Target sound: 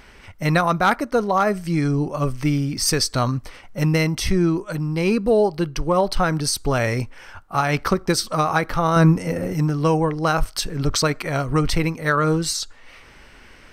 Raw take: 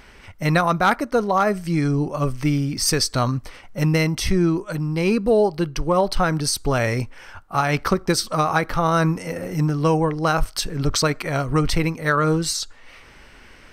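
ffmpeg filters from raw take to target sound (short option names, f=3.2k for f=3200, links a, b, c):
-filter_complex "[0:a]asettb=1/sr,asplit=3[a][b][c];[a]atrim=end=8.964[d];[b]atrim=start=8.96:end=9.53,asetpts=PTS-STARTPTS,afade=t=in:d=0.004:c=qsin,afade=t=out:st=0.566:d=0.004:c=qsin,lowshelf=f=430:g=7.5[e];[c]atrim=start=9.526[f];[d][e]acrossfade=d=0.004:c1=hsin:c2=qsin[g];[g][f]acrossfade=d=0.004:c1=qsin:c2=hsin"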